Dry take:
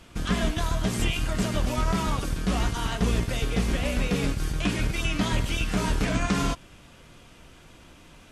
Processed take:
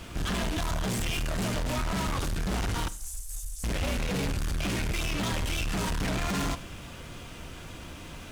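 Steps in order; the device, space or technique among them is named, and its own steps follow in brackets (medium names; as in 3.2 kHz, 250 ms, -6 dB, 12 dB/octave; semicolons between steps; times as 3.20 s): 2.88–3.64 s: inverse Chebyshev band-stop 140–1500 Hz, stop band 80 dB; open-reel tape (saturation -36 dBFS, distortion -4 dB; peaking EQ 84 Hz +4 dB 0.85 oct; white noise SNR 34 dB); Schroeder reverb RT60 0.49 s, combs from 32 ms, DRR 15.5 dB; trim +7.5 dB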